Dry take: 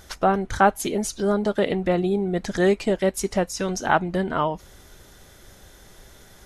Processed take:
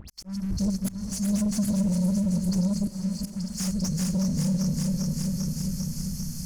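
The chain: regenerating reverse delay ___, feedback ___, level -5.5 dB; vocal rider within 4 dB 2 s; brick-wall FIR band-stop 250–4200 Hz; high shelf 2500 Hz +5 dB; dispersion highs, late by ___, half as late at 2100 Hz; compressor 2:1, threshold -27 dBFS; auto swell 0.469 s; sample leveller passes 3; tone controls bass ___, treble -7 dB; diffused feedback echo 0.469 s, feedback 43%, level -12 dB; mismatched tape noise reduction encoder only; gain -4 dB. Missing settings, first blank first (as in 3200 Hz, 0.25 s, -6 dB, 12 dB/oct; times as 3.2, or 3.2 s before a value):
0.198 s, 81%, 89 ms, +1 dB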